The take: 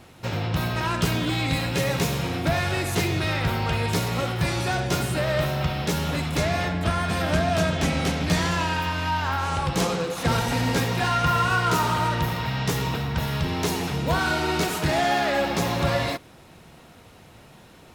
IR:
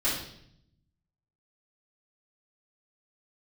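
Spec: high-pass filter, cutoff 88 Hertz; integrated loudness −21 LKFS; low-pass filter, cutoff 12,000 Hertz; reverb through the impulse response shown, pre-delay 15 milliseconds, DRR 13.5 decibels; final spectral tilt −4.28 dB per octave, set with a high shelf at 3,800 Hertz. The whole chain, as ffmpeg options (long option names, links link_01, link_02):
-filter_complex "[0:a]highpass=88,lowpass=12000,highshelf=frequency=3800:gain=4,asplit=2[link_01][link_02];[1:a]atrim=start_sample=2205,adelay=15[link_03];[link_02][link_03]afir=irnorm=-1:irlink=0,volume=-23.5dB[link_04];[link_01][link_04]amix=inputs=2:normalize=0,volume=3dB"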